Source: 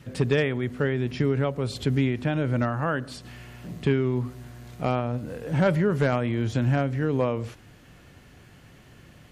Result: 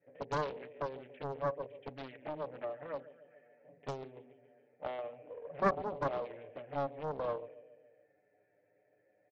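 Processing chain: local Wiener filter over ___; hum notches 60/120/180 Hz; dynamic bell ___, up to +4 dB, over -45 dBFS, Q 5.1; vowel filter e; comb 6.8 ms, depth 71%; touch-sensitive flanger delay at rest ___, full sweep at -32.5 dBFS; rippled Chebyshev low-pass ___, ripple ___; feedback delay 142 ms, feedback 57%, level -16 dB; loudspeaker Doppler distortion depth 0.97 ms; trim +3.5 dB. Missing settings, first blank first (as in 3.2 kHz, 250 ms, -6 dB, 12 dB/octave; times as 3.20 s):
15 samples, 1.3 kHz, 10.8 ms, 3.2 kHz, 9 dB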